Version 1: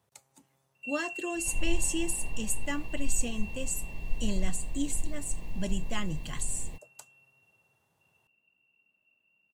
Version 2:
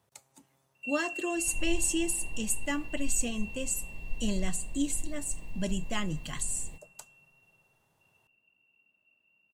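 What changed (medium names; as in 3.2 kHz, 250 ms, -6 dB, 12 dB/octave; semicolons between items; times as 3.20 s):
second sound -5.0 dB; reverb: on, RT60 1.9 s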